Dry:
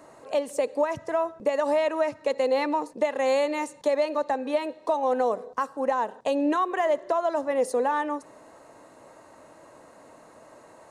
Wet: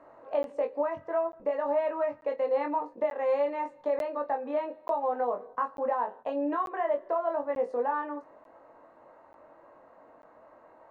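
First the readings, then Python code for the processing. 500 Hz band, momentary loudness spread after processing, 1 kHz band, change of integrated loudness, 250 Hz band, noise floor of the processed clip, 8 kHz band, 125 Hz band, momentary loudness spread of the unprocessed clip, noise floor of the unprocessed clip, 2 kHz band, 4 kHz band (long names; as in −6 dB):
−4.0 dB, 5 LU, −3.5 dB, −4.0 dB, −7.0 dB, −57 dBFS, below −25 dB, can't be measured, 5 LU, −52 dBFS, −8.0 dB, below −15 dB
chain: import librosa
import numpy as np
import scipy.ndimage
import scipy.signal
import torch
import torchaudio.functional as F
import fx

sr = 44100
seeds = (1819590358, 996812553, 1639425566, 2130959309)

p1 = scipy.signal.sosfilt(scipy.signal.butter(2, 1400.0, 'lowpass', fs=sr, output='sos'), x)
p2 = fx.rider(p1, sr, range_db=10, speed_s=0.5)
p3 = p1 + (p2 * librosa.db_to_amplitude(-1.5))
p4 = fx.peak_eq(p3, sr, hz=130.0, db=-10.5, octaves=2.6)
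p5 = fx.notch(p4, sr, hz=410.0, q=12.0)
p6 = p5 + fx.room_early_taps(p5, sr, ms=(21, 44), db=(-4.0, -14.5), dry=0)
p7 = fx.buffer_crackle(p6, sr, first_s=0.43, period_s=0.89, block=512, kind='zero')
y = p7 * librosa.db_to_amplitude(-8.5)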